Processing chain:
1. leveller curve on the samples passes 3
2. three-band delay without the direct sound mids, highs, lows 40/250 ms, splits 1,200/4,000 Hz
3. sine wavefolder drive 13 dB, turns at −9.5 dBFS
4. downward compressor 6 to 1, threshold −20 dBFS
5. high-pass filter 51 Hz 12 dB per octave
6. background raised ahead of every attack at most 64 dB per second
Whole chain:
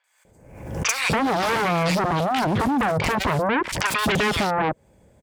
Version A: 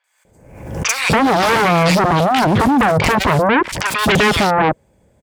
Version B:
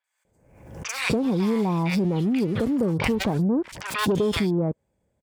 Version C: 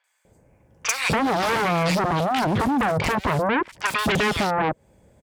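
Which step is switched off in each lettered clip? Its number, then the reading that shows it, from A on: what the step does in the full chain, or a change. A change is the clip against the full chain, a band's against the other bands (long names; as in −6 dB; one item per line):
4, average gain reduction 7.0 dB
3, change in crest factor −2.0 dB
6, change in crest factor −4.5 dB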